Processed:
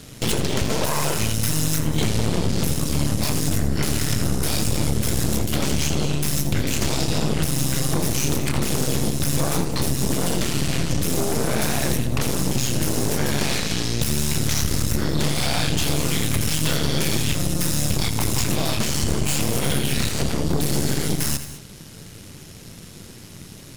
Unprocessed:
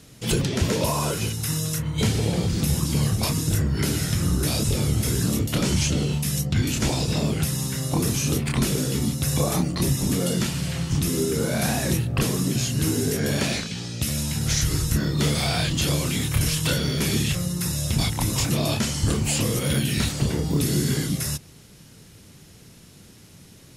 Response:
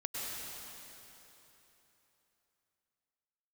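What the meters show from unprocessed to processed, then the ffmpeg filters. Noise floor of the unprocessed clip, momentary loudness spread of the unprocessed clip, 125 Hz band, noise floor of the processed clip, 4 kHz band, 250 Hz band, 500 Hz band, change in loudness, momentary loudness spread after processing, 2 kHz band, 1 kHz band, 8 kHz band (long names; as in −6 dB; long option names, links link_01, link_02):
−49 dBFS, 3 LU, −0.5 dB, −41 dBFS, +2.0 dB, +0.5 dB, +1.5 dB, +1.0 dB, 2 LU, +2.0 dB, +3.0 dB, +2.0 dB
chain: -filter_complex "[0:a]acompressor=threshold=-29dB:ratio=6,aeval=exprs='0.133*(cos(1*acos(clip(val(0)/0.133,-1,1)))-cos(1*PI/2))+0.0299*(cos(8*acos(clip(val(0)/0.133,-1,1)))-cos(8*PI/2))':channel_layout=same,asplit=2[link_01][link_02];[1:a]atrim=start_sample=2205,atrim=end_sample=6174,adelay=83[link_03];[link_02][link_03]afir=irnorm=-1:irlink=0,volume=-8.5dB[link_04];[link_01][link_04]amix=inputs=2:normalize=0,volume=6.5dB"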